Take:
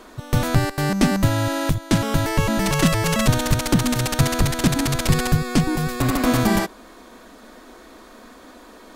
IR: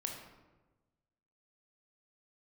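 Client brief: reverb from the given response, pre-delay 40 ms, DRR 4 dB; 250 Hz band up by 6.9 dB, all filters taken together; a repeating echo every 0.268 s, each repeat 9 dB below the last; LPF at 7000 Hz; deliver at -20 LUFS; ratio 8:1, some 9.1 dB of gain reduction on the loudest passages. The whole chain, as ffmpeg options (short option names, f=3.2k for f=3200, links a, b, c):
-filter_complex "[0:a]lowpass=7k,equalizer=f=250:t=o:g=8.5,acompressor=threshold=-16dB:ratio=8,aecho=1:1:268|536|804|1072:0.355|0.124|0.0435|0.0152,asplit=2[a][b];[1:a]atrim=start_sample=2205,adelay=40[c];[b][c]afir=irnorm=-1:irlink=0,volume=-4dB[d];[a][d]amix=inputs=2:normalize=0,volume=-0.5dB"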